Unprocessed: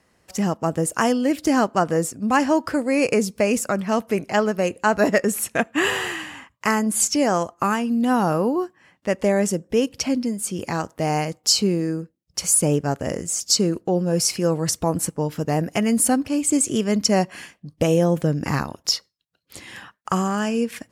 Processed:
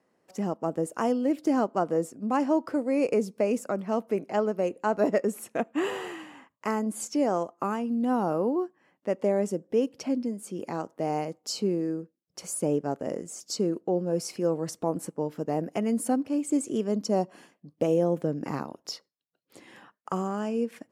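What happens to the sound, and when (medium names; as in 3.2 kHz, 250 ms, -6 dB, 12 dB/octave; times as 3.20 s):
16.87–17.52 s: peaking EQ 2.1 kHz -8 dB 0.73 oct
whole clip: dynamic bell 1.7 kHz, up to -6 dB, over -44 dBFS, Q 7.3; high-pass 270 Hz 12 dB/octave; tilt shelf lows +7.5 dB, about 1.1 kHz; trim -9 dB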